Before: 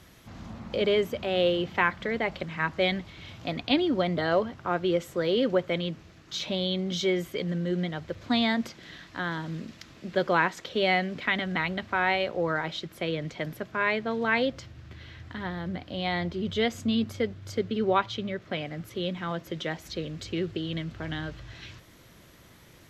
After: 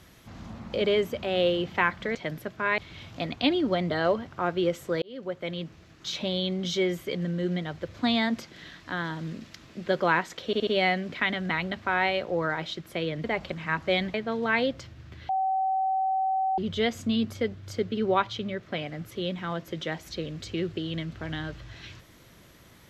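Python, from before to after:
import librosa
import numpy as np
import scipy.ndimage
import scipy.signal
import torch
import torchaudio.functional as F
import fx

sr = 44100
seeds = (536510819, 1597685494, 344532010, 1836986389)

y = fx.edit(x, sr, fx.swap(start_s=2.15, length_s=0.9, other_s=13.3, other_length_s=0.63),
    fx.fade_in_span(start_s=5.29, length_s=1.14, curve='qsin'),
    fx.stutter(start_s=10.73, slice_s=0.07, count=4),
    fx.bleep(start_s=15.08, length_s=1.29, hz=764.0, db=-23.0), tone=tone)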